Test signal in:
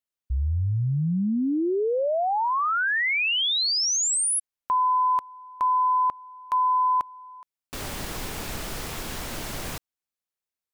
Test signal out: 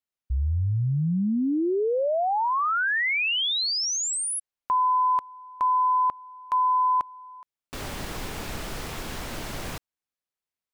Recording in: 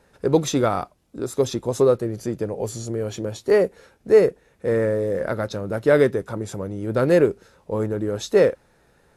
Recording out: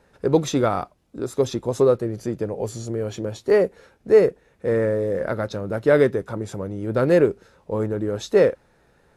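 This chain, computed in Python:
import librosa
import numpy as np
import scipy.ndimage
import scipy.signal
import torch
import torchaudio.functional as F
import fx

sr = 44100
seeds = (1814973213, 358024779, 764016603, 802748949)

y = fx.high_shelf(x, sr, hz=5800.0, db=-6.0)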